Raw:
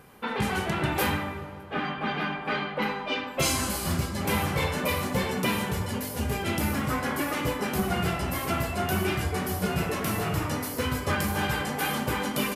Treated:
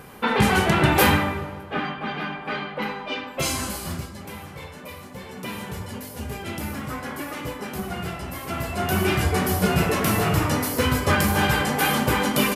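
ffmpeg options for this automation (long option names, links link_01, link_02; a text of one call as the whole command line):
ffmpeg -i in.wav -af "volume=27.5dB,afade=type=out:start_time=1.15:duration=0.85:silence=0.354813,afade=type=out:start_time=3.65:duration=0.67:silence=0.266073,afade=type=in:start_time=5.2:duration=0.55:silence=0.398107,afade=type=in:start_time=8.45:duration=0.82:silence=0.298538" out.wav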